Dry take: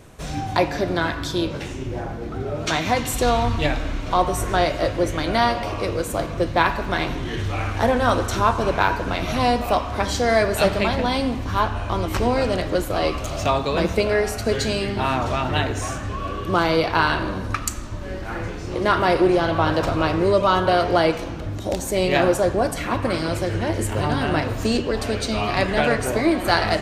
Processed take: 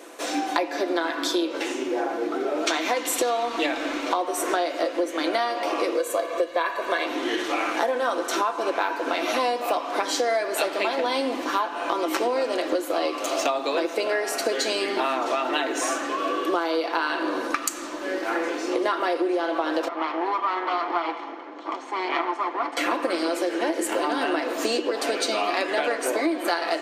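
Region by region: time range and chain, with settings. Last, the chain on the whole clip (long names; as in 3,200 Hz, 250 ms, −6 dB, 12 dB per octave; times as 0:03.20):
0:05.98–0:07.06: notch filter 5,300 Hz, Q 7.7 + comb filter 1.8 ms, depth 62%
0:19.88–0:22.77: lower of the sound and its delayed copy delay 0.92 ms + high-pass filter 700 Hz 6 dB per octave + head-to-tape spacing loss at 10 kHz 37 dB
whole clip: elliptic high-pass filter 270 Hz, stop band 40 dB; comb filter 5.9 ms, depth 40%; downward compressor 10 to 1, threshold −27 dBFS; level +6 dB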